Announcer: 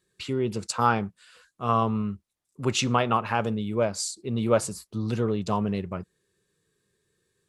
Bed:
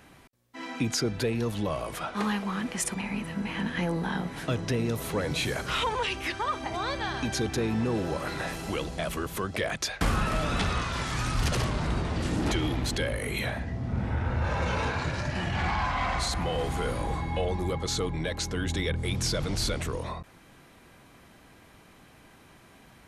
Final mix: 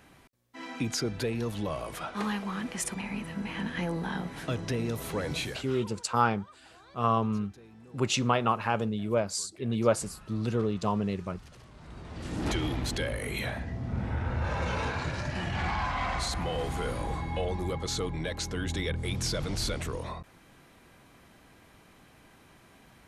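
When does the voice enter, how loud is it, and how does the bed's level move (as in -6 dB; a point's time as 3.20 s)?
5.35 s, -2.5 dB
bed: 5.38 s -3 dB
6.00 s -25 dB
11.65 s -25 dB
12.48 s -2.5 dB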